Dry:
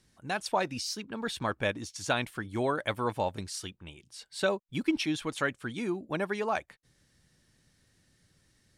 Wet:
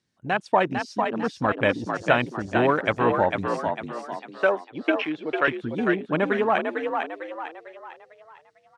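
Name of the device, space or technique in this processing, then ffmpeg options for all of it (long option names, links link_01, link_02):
over-cleaned archive recording: -filter_complex "[0:a]highpass=110,lowpass=6700,afwtdn=0.0178,asettb=1/sr,asplit=3[link_01][link_02][link_03];[link_01]atrim=end=4.194[link_04];[link_02]atrim=start=4.19:end=5.48,asetpts=PTS-STARTPTS,afade=type=in:duration=0.004:curve=qsin,afade=type=out:start_time=1.286:duration=0.004:curve=qsin,acrossover=split=360 4500:gain=0.158 1 0.0794[link_05][link_06][link_07];[link_05][link_06][link_07]amix=inputs=3:normalize=0[link_08];[link_03]atrim=start=5.476[link_09];[link_04][link_08]acrossfade=duration=0.004:curve1=hsin:curve2=qsin[link_10];[link_10][link_09]acrossfade=duration=0.004:curve1=qsin:curve2=hsin,asplit=6[link_11][link_12][link_13][link_14][link_15][link_16];[link_12]adelay=450,afreqshift=55,volume=-5dB[link_17];[link_13]adelay=900,afreqshift=110,volume=-12.5dB[link_18];[link_14]adelay=1350,afreqshift=165,volume=-20.1dB[link_19];[link_15]adelay=1800,afreqshift=220,volume=-27.6dB[link_20];[link_16]adelay=2250,afreqshift=275,volume=-35.1dB[link_21];[link_11][link_17][link_18][link_19][link_20][link_21]amix=inputs=6:normalize=0,volume=8.5dB"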